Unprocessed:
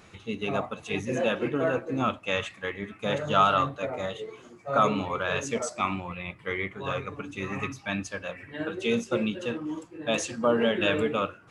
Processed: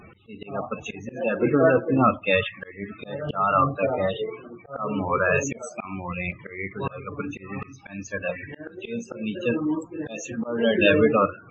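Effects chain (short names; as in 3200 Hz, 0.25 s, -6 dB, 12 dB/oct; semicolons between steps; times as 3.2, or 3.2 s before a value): loudest bins only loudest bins 32; auto swell 0.406 s; gain +8.5 dB; AAC 32 kbps 24000 Hz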